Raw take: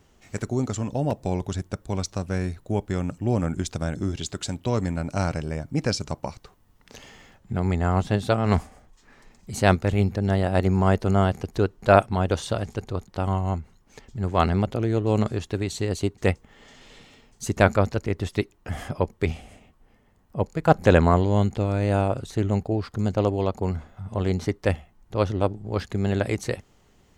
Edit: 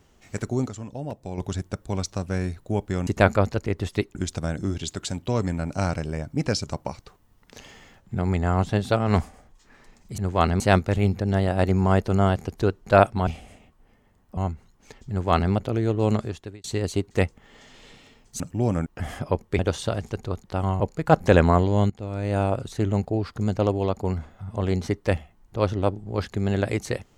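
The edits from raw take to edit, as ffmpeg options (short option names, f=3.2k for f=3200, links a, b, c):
-filter_complex "[0:a]asplit=15[a][b][c][d][e][f][g][h][i][j][k][l][m][n][o];[a]atrim=end=0.692[p];[b]atrim=start=0.688:end=1.382,asetpts=PTS-STARTPTS,volume=-8dB[q];[c]atrim=start=1.378:end=3.072[r];[d]atrim=start=17.468:end=18.552[s];[e]atrim=start=3.528:end=9.562[t];[f]atrim=start=14.168:end=14.592[u];[g]atrim=start=9.558:end=12.232[v];[h]atrim=start=19.278:end=20.382[w];[i]atrim=start=13.438:end=15.71,asetpts=PTS-STARTPTS,afade=t=out:st=1.762:d=0.51[x];[j]atrim=start=15.71:end=17.472,asetpts=PTS-STARTPTS,afade=t=in:d=0.004:c=hsin[y];[k]atrim=start=3.068:end=3.532[z];[l]atrim=start=18.548:end=19.282[aa];[m]atrim=start=12.228:end=13.442[ab];[n]atrim=start=20.378:end=21.48,asetpts=PTS-STARTPTS,afade=t=out:st=1.098:d=0.004:c=hsin:silence=0.158489[ac];[o]atrim=start=21.48,asetpts=PTS-STARTPTS,afade=t=in:d=0.59:silence=0.158489[ad];[p][q]acrossfade=d=0.004:c1=hsin:c2=hsin[ae];[ae][r]acrossfade=d=0.004:c1=hsin:c2=hsin[af];[af][s]acrossfade=d=0.004:c1=hsin:c2=hsin[ag];[ag][t]acrossfade=d=0.004:c1=hsin:c2=hsin[ah];[ah][u]acrossfade=d=0.004:c1=hsin:c2=hsin[ai];[ai][v]acrossfade=d=0.004:c1=hsin:c2=hsin[aj];[aj][w]acrossfade=d=0.004:c1=hsin:c2=hsin[ak];[x][y]concat=n=2:v=0:a=1[al];[ak][al]acrossfade=d=0.004:c1=hsin:c2=hsin[am];[am][z]acrossfade=d=0.004:c1=hsin:c2=hsin[an];[an][aa]acrossfade=d=0.004:c1=hsin:c2=hsin[ao];[ao][ab]acrossfade=d=0.004:c1=hsin:c2=hsin[ap];[ac][ad]concat=n=2:v=0:a=1[aq];[ap][aq]acrossfade=d=0.004:c1=hsin:c2=hsin"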